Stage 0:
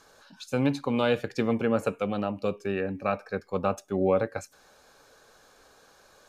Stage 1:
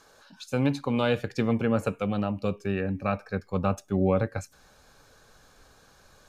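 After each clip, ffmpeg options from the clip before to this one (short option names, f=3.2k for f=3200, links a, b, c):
-af "asubboost=boost=3.5:cutoff=210"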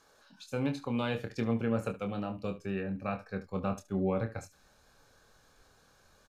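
-af "aecho=1:1:26|72:0.447|0.168,volume=-7.5dB"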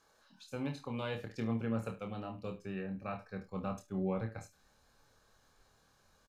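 -filter_complex "[0:a]asplit=2[a][b];[b]adelay=27,volume=-6dB[c];[a][c]amix=inputs=2:normalize=0,volume=-6dB"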